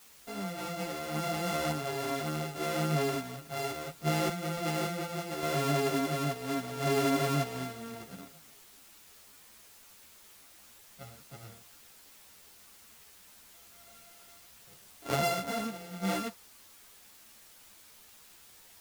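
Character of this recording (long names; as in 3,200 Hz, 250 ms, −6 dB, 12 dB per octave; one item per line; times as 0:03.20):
a buzz of ramps at a fixed pitch in blocks of 64 samples
sample-and-hold tremolo
a quantiser's noise floor 10 bits, dither triangular
a shimmering, thickened sound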